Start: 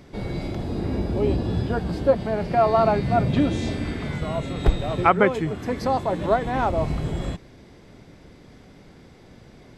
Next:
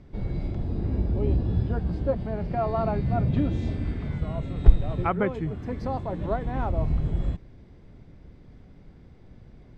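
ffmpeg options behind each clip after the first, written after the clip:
-af "aemphasis=mode=reproduction:type=bsi,volume=0.335"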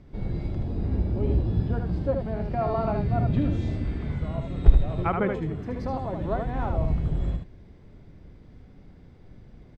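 -af "aecho=1:1:76:0.562,volume=0.891"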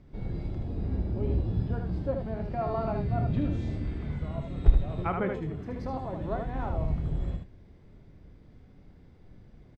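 -filter_complex "[0:a]asplit=2[s0][s1];[s1]adelay=27,volume=0.251[s2];[s0][s2]amix=inputs=2:normalize=0,volume=0.596"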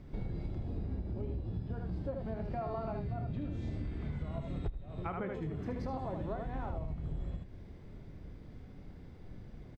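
-af "acompressor=threshold=0.0141:ratio=20,volume=1.5"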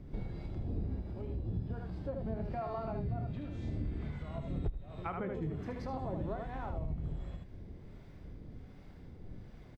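-filter_complex "[0:a]acrossover=split=620[s0][s1];[s0]aeval=exprs='val(0)*(1-0.5/2+0.5/2*cos(2*PI*1.3*n/s))':c=same[s2];[s1]aeval=exprs='val(0)*(1-0.5/2-0.5/2*cos(2*PI*1.3*n/s))':c=same[s3];[s2][s3]amix=inputs=2:normalize=0,volume=1.26"

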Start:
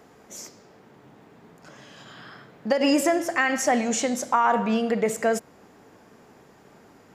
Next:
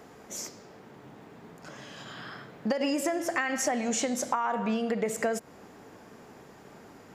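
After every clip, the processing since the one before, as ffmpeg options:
-af "acompressor=threshold=0.0447:ratio=10,volume=1.26"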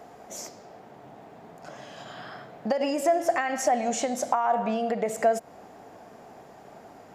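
-af "equalizer=f=700:t=o:w=0.58:g=12,volume=0.841"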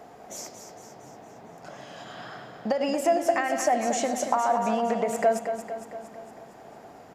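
-af "aecho=1:1:229|458|687|916|1145|1374|1603:0.376|0.214|0.122|0.0696|0.0397|0.0226|0.0129"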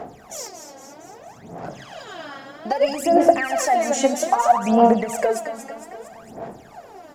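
-af "aphaser=in_gain=1:out_gain=1:delay=3.7:decay=0.77:speed=0.62:type=sinusoidal,volume=1.19"

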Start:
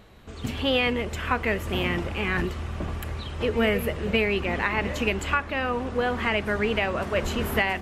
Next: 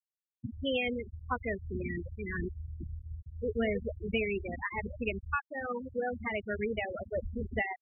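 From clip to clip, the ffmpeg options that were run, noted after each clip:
-af "afftfilt=real='re*gte(hypot(re,im),0.2)':imag='im*gte(hypot(re,im),0.2)':win_size=1024:overlap=0.75,volume=0.447"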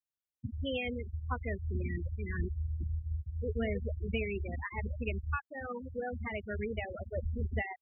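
-af "equalizer=f=70:t=o:w=1.4:g=12,volume=0.596"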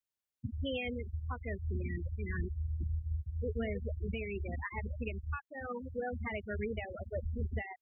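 -af "alimiter=level_in=1.41:limit=0.0631:level=0:latency=1:release=374,volume=0.708"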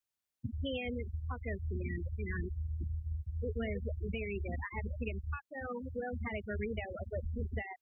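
-filter_complex "[0:a]acrossover=split=260|640|1800[s0][s1][s2][s3];[s0]acompressor=threshold=0.0158:ratio=4[s4];[s1]acompressor=threshold=0.00794:ratio=4[s5];[s2]acompressor=threshold=0.00447:ratio=4[s6];[s3]acompressor=threshold=0.00562:ratio=4[s7];[s4][s5][s6][s7]amix=inputs=4:normalize=0,volume=1.19"

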